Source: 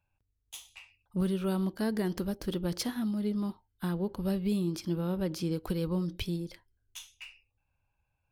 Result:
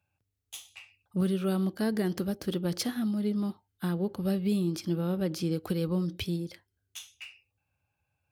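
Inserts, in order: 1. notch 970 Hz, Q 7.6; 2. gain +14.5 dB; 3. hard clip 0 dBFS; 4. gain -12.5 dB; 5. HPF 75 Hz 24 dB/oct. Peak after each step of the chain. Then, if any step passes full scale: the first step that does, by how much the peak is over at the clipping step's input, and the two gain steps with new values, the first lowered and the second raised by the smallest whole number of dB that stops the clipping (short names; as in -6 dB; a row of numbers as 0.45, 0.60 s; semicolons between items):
-20.0, -5.5, -5.5, -18.0, -18.0 dBFS; no overload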